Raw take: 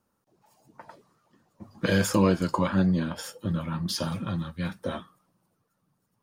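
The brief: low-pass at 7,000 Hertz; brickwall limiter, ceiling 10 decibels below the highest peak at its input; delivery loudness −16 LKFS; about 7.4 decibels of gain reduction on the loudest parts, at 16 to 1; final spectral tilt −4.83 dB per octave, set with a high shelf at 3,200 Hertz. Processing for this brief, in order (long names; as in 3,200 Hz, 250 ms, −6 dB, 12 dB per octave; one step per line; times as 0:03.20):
low-pass filter 7,000 Hz
high-shelf EQ 3,200 Hz +8.5 dB
downward compressor 16 to 1, threshold −24 dBFS
level +17.5 dB
brickwall limiter −6.5 dBFS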